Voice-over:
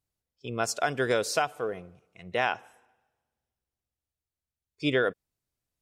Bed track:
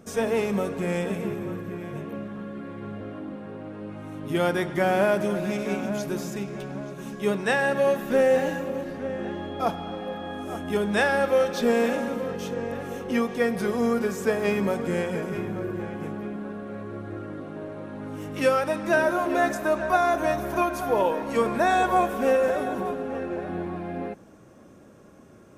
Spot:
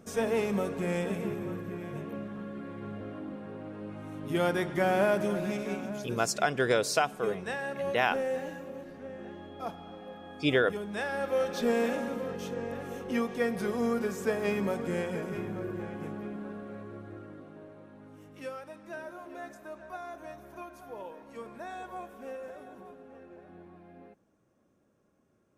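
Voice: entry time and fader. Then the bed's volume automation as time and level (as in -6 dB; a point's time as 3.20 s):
5.60 s, 0.0 dB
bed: 5.42 s -4 dB
6.33 s -12 dB
11.01 s -12 dB
11.53 s -5.5 dB
16.55 s -5.5 dB
18.69 s -20 dB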